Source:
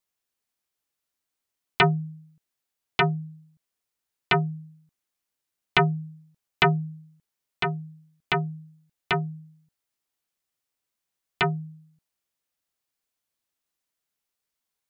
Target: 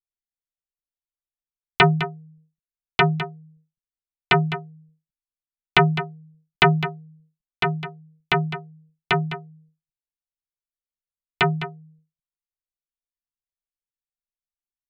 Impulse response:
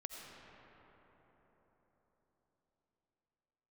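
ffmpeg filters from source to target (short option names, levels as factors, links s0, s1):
-filter_complex "[0:a]anlmdn=0.0398,asplit=2[s0][s1];[s1]aecho=0:1:207:0.251[s2];[s0][s2]amix=inputs=2:normalize=0,volume=1.58"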